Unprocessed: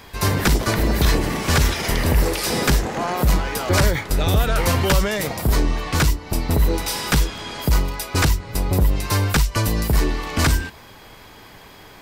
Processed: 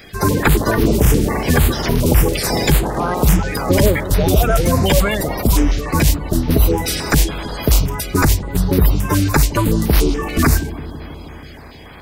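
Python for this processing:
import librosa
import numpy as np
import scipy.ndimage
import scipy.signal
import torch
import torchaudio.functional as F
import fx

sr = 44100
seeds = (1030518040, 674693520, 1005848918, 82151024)

y = fx.spec_quant(x, sr, step_db=30)
y = fx.echo_bbd(y, sr, ms=160, stages=1024, feedback_pct=78, wet_db=-15)
y = fx.filter_held_notch(y, sr, hz=7.0, low_hz=970.0, high_hz=7600.0)
y = F.gain(torch.from_numpy(y), 5.0).numpy()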